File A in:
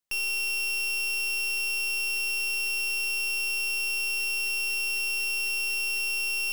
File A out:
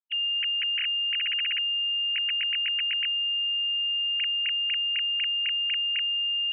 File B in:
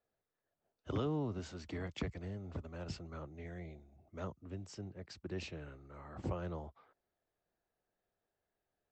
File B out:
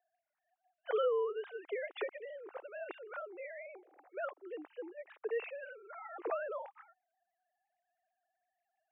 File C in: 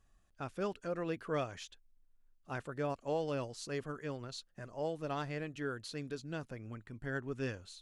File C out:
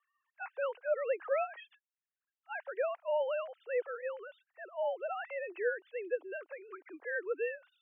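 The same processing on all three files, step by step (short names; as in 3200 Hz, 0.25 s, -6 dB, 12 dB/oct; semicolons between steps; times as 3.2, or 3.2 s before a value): sine-wave speech; mistuned SSB +81 Hz 270–2900 Hz; gain +3 dB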